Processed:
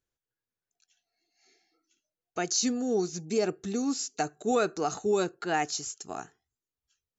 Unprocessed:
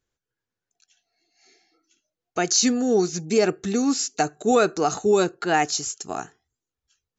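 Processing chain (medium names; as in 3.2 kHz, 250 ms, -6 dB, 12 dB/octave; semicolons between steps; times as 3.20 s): 2.44–4.14 s: dynamic bell 1.9 kHz, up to -4 dB, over -42 dBFS, Q 1.1; trim -7.5 dB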